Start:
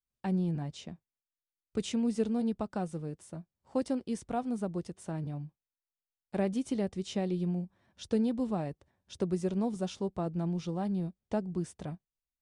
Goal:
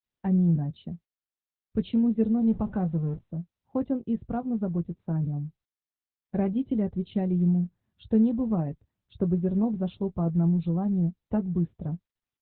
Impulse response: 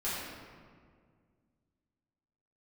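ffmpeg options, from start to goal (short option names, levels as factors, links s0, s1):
-filter_complex "[0:a]asettb=1/sr,asplit=3[s0][s1][s2];[s0]atrim=end=2.474[s3];[s1]atrim=start=2.47:end=3.19,asetpts=PTS-STARTPTS,afade=t=in:d=0.004:c=qsin,afade=t=out:st=0.716:d=0.004:c=qsin,aeval=exprs='val(0)+0.5*0.00841*sgn(val(0))':c=same[s4];[s2]atrim=start=3.186[s5];[s3][s4]acrossfade=d=0.004:c1=hsin:c2=qsin[s6];[s6][s5]acrossfade=d=0.004:c1=qsin:c2=hsin,afftdn=nr=15:nf=-48,bass=f=250:g=11,treble=f=4000:g=-8,asplit=2[s7][s8];[s8]adelay=18,volume=0.251[s9];[s7][s9]amix=inputs=2:normalize=0" -ar 48000 -c:a libopus -b:a 8k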